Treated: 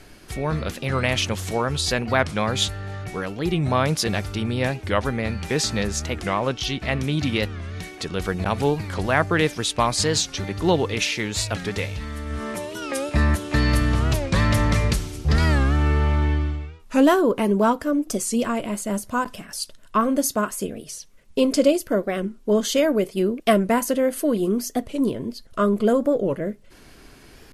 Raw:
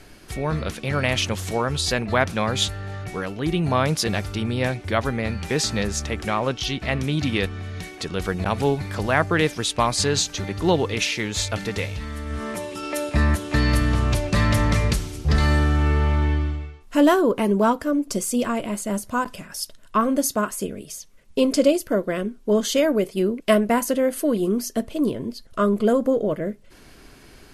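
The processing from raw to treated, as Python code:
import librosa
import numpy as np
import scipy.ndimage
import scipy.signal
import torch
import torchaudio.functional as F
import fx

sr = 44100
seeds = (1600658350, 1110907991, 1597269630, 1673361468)

y = fx.record_warp(x, sr, rpm=45.0, depth_cents=160.0)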